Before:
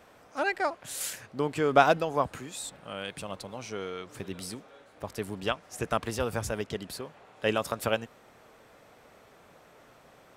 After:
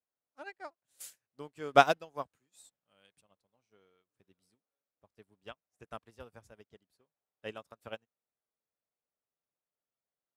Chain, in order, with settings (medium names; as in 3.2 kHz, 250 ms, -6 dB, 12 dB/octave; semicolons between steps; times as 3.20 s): 1.00–3.21 s: treble shelf 3.5 kHz +7.5 dB; upward expansion 2.5:1, over -44 dBFS